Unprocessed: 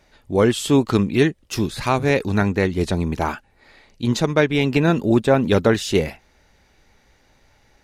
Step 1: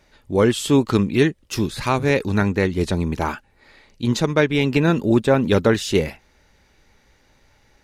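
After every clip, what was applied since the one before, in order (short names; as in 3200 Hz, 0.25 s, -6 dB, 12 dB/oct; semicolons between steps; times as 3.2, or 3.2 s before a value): bell 710 Hz -5 dB 0.22 oct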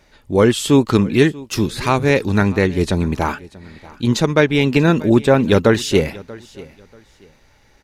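feedback echo 0.636 s, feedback 25%, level -21 dB; gain +3.5 dB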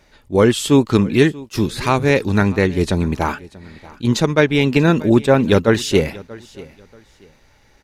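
attack slew limiter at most 470 dB/s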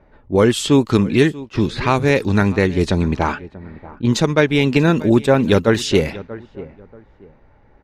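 low-pass opened by the level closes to 1100 Hz, open at -11 dBFS; in parallel at +2 dB: compressor, threshold -20 dBFS, peak gain reduction 12.5 dB; on the sum: gain -3.5 dB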